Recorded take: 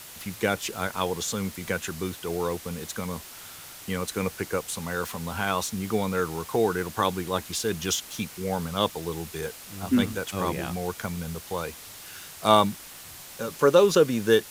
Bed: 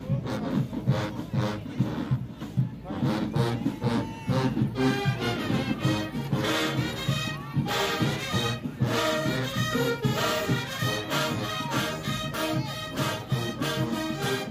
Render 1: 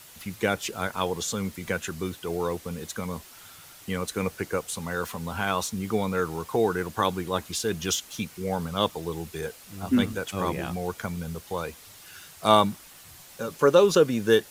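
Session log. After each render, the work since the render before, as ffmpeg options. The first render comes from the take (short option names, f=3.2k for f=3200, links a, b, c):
-af "afftdn=nr=6:nf=-44"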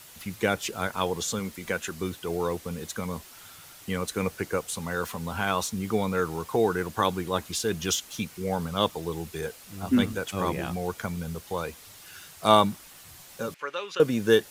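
-filter_complex "[0:a]asettb=1/sr,asplit=3[a][b][c];[a]atrim=end=1.394[d];[b]atrim=start=1.39:end=2.01,asetpts=PTS-STARTPTS,afade=t=in:d=0.004:c=qsin,afade=t=out:st=0.616:d=0.004:c=qsin,equalizer=f=110:w=0.93:g=-7[e];[c]atrim=start=2.006[f];[d][e]acrossfade=d=0.004:c1=hsin:c2=qsin[g];[g][f]acrossfade=d=0.004:c1=qsin:c2=hsin,asettb=1/sr,asplit=3[h][i][j];[h]atrim=end=13.544[k];[i]atrim=start=13.54:end=14,asetpts=PTS-STARTPTS,afade=t=in:d=0.004:c=qsin,afade=t=out:st=0.456:d=0.004:c=qsin,bandpass=f=2.2k:t=q:w=2[l];[j]atrim=start=13.996[m];[k][l]acrossfade=d=0.004:c1=hsin:c2=qsin[n];[n][m]acrossfade=d=0.004:c1=qsin:c2=hsin"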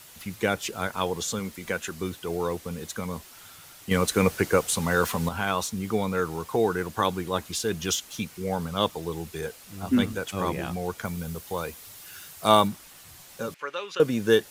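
-filter_complex "[0:a]asettb=1/sr,asplit=3[a][b][c];[a]atrim=end=3.914[d];[b]atrim=start=3.91:end=5.29,asetpts=PTS-STARTPTS,afade=t=in:d=0.004:c=qsin,afade=t=out:st=1.376:d=0.004:c=qsin,acontrast=81[e];[c]atrim=start=5.286[f];[d][e]acrossfade=d=0.004:c1=hsin:c2=qsin[g];[g][f]acrossfade=d=0.004:c1=qsin:c2=hsin,asettb=1/sr,asplit=3[h][i][j];[h]atrim=end=11.054[k];[i]atrim=start=11.05:end=12.68,asetpts=PTS-STARTPTS,afade=t=in:d=0.004:c=qsin,afade=t=out:st=1.626:d=0.004:c=qsin,highshelf=f=11k:g=8.5[l];[j]atrim=start=12.676[m];[k][l]acrossfade=d=0.004:c1=hsin:c2=qsin[n];[n][m]acrossfade=d=0.004:c1=qsin:c2=hsin"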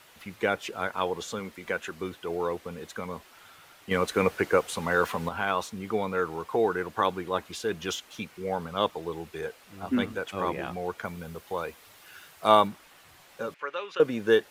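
-af "bass=f=250:g=-9,treble=f=4k:g=-12"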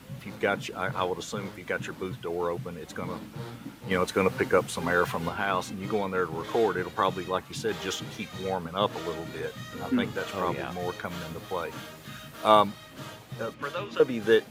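-filter_complex "[1:a]volume=-13.5dB[a];[0:a][a]amix=inputs=2:normalize=0"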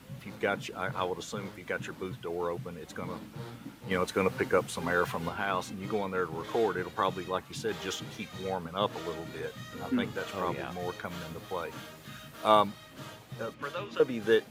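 -af "volume=-3.5dB"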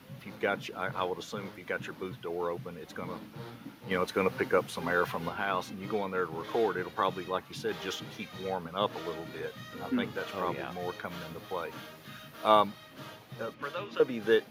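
-af "highpass=f=130:p=1,equalizer=f=7.8k:w=2.6:g=-10.5"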